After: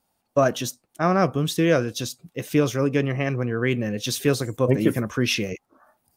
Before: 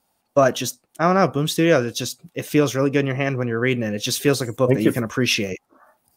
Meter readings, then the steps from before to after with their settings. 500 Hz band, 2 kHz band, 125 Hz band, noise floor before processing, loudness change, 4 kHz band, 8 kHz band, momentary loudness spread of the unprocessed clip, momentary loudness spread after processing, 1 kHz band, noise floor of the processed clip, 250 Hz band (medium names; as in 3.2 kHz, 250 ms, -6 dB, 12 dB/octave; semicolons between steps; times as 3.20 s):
-3.0 dB, -4.0 dB, -1.0 dB, -71 dBFS, -3.0 dB, -4.0 dB, -4.0 dB, 10 LU, 10 LU, -3.5 dB, -74 dBFS, -2.0 dB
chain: bass shelf 220 Hz +4.5 dB; trim -4 dB